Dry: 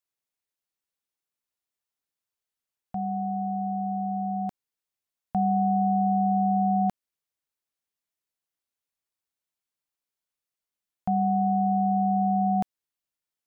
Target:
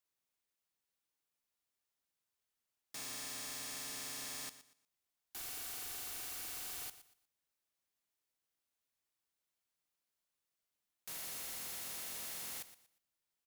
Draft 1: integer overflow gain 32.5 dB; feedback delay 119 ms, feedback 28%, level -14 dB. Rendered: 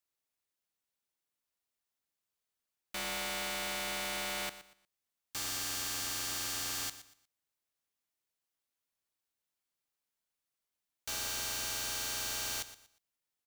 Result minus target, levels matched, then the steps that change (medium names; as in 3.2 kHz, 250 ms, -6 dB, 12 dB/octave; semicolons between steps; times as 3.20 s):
integer overflow: distortion -24 dB
change: integer overflow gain 40 dB